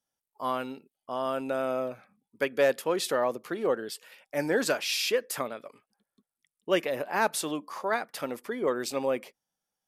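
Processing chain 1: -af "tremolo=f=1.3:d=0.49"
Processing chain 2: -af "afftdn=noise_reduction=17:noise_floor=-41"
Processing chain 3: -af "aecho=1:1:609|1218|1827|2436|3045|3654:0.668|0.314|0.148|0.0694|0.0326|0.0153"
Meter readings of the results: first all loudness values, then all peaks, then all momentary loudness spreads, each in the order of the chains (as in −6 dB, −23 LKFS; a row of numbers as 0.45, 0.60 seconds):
−32.5, −30.0, −29.0 LKFS; −14.0, −12.5, −12.0 dBFS; 11, 11, 9 LU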